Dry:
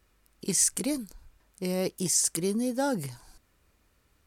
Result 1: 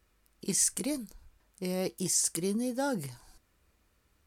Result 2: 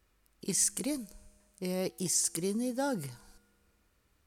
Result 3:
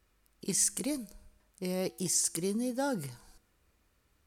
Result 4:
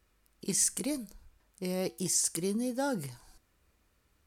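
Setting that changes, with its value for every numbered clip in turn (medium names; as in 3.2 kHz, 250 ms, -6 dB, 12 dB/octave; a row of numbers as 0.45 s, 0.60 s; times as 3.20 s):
feedback comb, decay: 0.17 s, 2 s, 0.96 s, 0.4 s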